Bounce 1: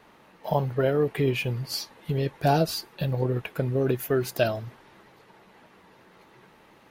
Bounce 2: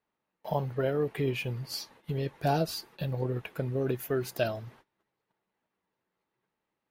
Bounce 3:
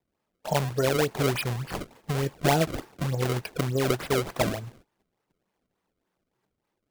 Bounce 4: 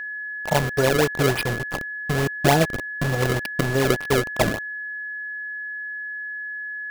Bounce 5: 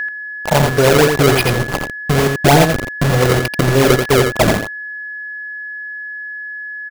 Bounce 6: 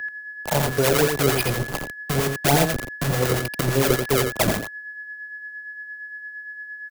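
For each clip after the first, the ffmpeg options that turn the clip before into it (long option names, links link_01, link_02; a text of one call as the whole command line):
ffmpeg -i in.wav -af "agate=range=-24dB:threshold=-49dB:ratio=16:detection=peak,volume=-5.5dB" out.wav
ffmpeg -i in.wav -af "acrusher=samples=29:mix=1:aa=0.000001:lfo=1:lforange=46.4:lforate=3.4,volume=4.5dB" out.wav
ffmpeg -i in.wav -af "aeval=exprs='val(0)*gte(abs(val(0)),0.0376)':channel_layout=same,aeval=exprs='val(0)+0.02*sin(2*PI*1700*n/s)':channel_layout=same,volume=5dB" out.wav
ffmpeg -i in.wav -filter_complex "[0:a]aeval=exprs='0.531*(cos(1*acos(clip(val(0)/0.531,-1,1)))-cos(1*PI/2))+0.00299*(cos(2*acos(clip(val(0)/0.531,-1,1)))-cos(2*PI/2))+0.0596*(cos(5*acos(clip(val(0)/0.531,-1,1)))-cos(5*PI/2))':channel_layout=same,asplit=2[link_01][link_02];[link_02]asoftclip=type=tanh:threshold=-16.5dB,volume=-7dB[link_03];[link_01][link_03]amix=inputs=2:normalize=0,aecho=1:1:85:0.531,volume=3.5dB" out.wav
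ffmpeg -i in.wav -filter_complex "[0:a]acrossover=split=150[link_01][link_02];[link_02]crystalizer=i=1:c=0[link_03];[link_01][link_03]amix=inputs=2:normalize=0,acrossover=split=700[link_04][link_05];[link_04]aeval=exprs='val(0)*(1-0.5/2+0.5/2*cos(2*PI*8.7*n/s))':channel_layout=same[link_06];[link_05]aeval=exprs='val(0)*(1-0.5/2-0.5/2*cos(2*PI*8.7*n/s))':channel_layout=same[link_07];[link_06][link_07]amix=inputs=2:normalize=0,acrusher=bits=10:mix=0:aa=0.000001,volume=-6.5dB" out.wav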